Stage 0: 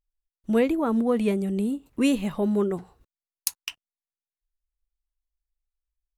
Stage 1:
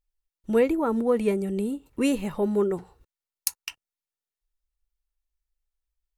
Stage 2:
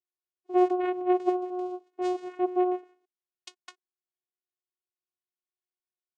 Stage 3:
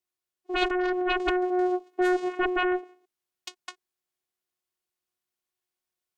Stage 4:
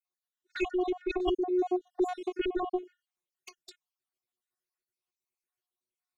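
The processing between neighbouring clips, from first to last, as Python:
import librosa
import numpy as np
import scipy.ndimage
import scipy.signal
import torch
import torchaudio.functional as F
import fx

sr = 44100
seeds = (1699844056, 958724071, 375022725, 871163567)

y1 = fx.dynamic_eq(x, sr, hz=3400.0, q=2.7, threshold_db=-53.0, ratio=4.0, max_db=-6)
y1 = y1 + 0.31 * np.pad(y1, (int(2.2 * sr / 1000.0), 0))[:len(y1)]
y2 = fx.vocoder(y1, sr, bands=4, carrier='saw', carrier_hz=363.0)
y2 = y2 * 10.0 ** (-2.0 / 20.0)
y3 = fx.cheby_harmonics(y2, sr, harmonics=(3, 4, 7), levels_db=(-15, -13, -7), full_scale_db=-12.0)
y3 = fx.rider(y3, sr, range_db=10, speed_s=0.5)
y4 = fx.spec_dropout(y3, sr, seeds[0], share_pct=56)
y4 = fx.env_flanger(y4, sr, rest_ms=8.2, full_db=-28.5)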